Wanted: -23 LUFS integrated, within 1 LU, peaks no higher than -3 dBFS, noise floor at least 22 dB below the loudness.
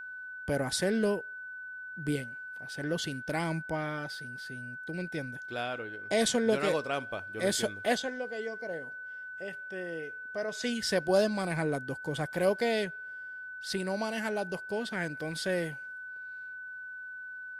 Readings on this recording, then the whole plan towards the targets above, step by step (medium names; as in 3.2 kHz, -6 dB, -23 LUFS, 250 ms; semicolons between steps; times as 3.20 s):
steady tone 1.5 kHz; tone level -40 dBFS; loudness -33.5 LUFS; peak level -15.0 dBFS; loudness target -23.0 LUFS
-> band-stop 1.5 kHz, Q 30; trim +10.5 dB